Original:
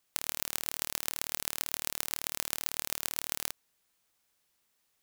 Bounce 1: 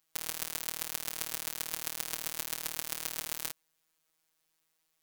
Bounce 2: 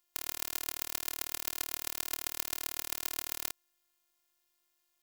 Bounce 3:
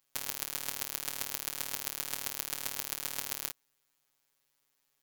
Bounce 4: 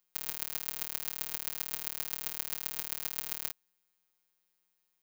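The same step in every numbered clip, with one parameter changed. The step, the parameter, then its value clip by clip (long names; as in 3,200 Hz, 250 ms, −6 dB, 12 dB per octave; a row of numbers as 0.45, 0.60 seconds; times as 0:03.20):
phases set to zero, frequency: 160, 350, 140, 180 Hertz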